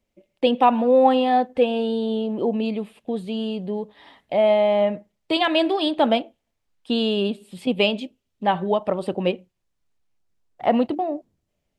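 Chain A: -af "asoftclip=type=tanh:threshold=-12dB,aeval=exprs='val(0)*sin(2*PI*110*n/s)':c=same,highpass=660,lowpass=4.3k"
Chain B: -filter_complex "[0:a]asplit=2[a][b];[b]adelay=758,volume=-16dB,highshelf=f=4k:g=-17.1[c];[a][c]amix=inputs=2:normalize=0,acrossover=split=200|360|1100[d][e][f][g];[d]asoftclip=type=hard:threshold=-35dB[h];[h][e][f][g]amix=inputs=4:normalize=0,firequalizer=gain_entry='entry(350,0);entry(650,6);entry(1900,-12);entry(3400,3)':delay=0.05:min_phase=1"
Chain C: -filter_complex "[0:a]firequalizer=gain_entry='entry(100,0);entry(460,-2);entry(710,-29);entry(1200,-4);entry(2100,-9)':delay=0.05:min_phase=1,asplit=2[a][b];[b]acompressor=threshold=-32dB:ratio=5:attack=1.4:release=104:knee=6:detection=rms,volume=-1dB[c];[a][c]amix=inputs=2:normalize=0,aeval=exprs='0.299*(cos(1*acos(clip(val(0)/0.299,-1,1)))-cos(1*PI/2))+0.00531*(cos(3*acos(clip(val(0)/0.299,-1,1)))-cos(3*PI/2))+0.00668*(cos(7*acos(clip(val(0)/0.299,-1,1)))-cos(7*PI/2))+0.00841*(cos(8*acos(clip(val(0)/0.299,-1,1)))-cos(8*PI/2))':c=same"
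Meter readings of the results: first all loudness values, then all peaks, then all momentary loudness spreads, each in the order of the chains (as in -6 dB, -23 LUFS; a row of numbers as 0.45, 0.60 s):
-30.5, -19.0, -25.5 LUFS; -10.5, -2.0, -10.5 dBFS; 16, 18, 10 LU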